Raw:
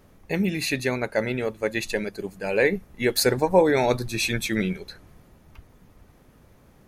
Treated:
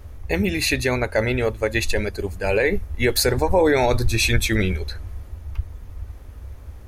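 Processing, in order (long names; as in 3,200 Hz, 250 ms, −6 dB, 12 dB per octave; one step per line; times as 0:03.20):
low shelf with overshoot 110 Hz +12 dB, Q 3
brickwall limiter −14.5 dBFS, peak gain reduction 7.5 dB
level +6 dB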